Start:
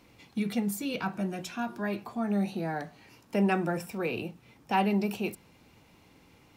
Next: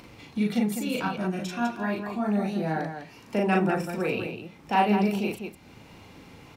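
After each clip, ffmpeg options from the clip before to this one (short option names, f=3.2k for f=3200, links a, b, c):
-filter_complex "[0:a]highshelf=f=8.4k:g=-7.5,acompressor=mode=upward:threshold=-45dB:ratio=2.5,asplit=2[a][b];[b]aecho=0:1:37.9|201.2:0.891|0.501[c];[a][c]amix=inputs=2:normalize=0,volume=1.5dB"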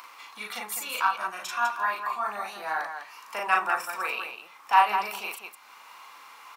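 -af "highpass=f=1.1k:t=q:w=4.6,highshelf=f=8.2k:g=10"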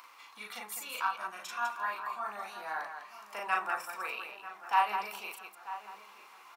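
-filter_complex "[0:a]asplit=2[a][b];[b]adelay=941,lowpass=f=2k:p=1,volume=-13.5dB,asplit=2[c][d];[d]adelay=941,lowpass=f=2k:p=1,volume=0.47,asplit=2[e][f];[f]adelay=941,lowpass=f=2k:p=1,volume=0.47,asplit=2[g][h];[h]adelay=941,lowpass=f=2k:p=1,volume=0.47,asplit=2[i][j];[j]adelay=941,lowpass=f=2k:p=1,volume=0.47[k];[a][c][e][g][i][k]amix=inputs=6:normalize=0,volume=-7.5dB"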